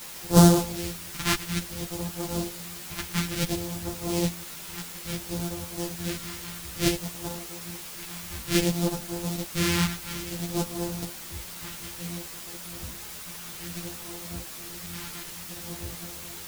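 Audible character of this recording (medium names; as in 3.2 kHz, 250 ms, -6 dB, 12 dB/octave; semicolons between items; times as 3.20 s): a buzz of ramps at a fixed pitch in blocks of 256 samples; phasing stages 2, 0.58 Hz, lowest notch 520–2100 Hz; a quantiser's noise floor 8-bit, dither triangular; a shimmering, thickened sound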